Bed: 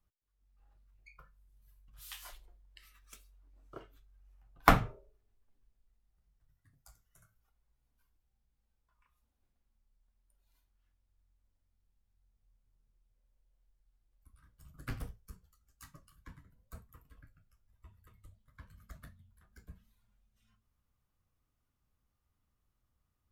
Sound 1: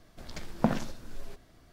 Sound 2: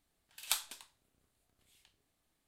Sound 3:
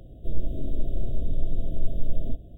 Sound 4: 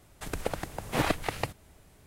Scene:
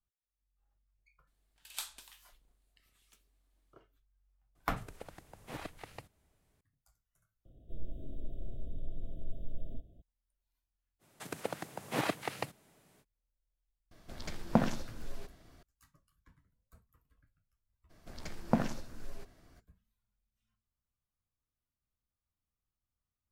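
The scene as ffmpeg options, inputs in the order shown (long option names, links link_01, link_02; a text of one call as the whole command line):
ffmpeg -i bed.wav -i cue0.wav -i cue1.wav -i cue2.wav -i cue3.wav -filter_complex "[4:a]asplit=2[link_01][link_02];[1:a]asplit=2[link_03][link_04];[0:a]volume=-12dB[link_05];[2:a]alimiter=limit=-15dB:level=0:latency=1:release=26[link_06];[link_02]highpass=frequency=130:width=0.5412,highpass=frequency=130:width=1.3066[link_07];[link_04]equalizer=frequency=3500:width_type=o:width=0.44:gain=-3.5[link_08];[link_06]atrim=end=2.47,asetpts=PTS-STARTPTS,volume=-4.5dB,afade=type=in:duration=0.004:curve=hsin,afade=type=out:start_time=2.466:duration=0.004:curve=hsin,adelay=1270[link_09];[link_01]atrim=end=2.06,asetpts=PTS-STARTPTS,volume=-17dB,afade=type=in:duration=0.004:curve=hsin,afade=type=out:start_time=2.056:duration=0.004:curve=hsin,adelay=4550[link_10];[3:a]atrim=end=2.57,asetpts=PTS-STARTPTS,volume=-14dB,afade=type=in:duration=0.004:curve=hsin,afade=type=out:start_time=2.566:duration=0.004:curve=hsin,adelay=7450[link_11];[link_07]atrim=end=2.06,asetpts=PTS-STARTPTS,volume=-5.5dB,afade=type=in:duration=0.05,afade=type=out:start_time=2.01:duration=0.05,adelay=10990[link_12];[link_03]atrim=end=1.72,asetpts=PTS-STARTPTS,volume=-1dB,afade=type=in:duration=0.004:curve=hsin,afade=type=out:start_time=1.716:duration=0.004:curve=hsin,adelay=13910[link_13];[link_08]atrim=end=1.72,asetpts=PTS-STARTPTS,volume=-3dB,afade=type=in:duration=0.02,afade=type=out:start_time=1.7:duration=0.02,adelay=17890[link_14];[link_05][link_09][link_10][link_11][link_12][link_13][link_14]amix=inputs=7:normalize=0" out.wav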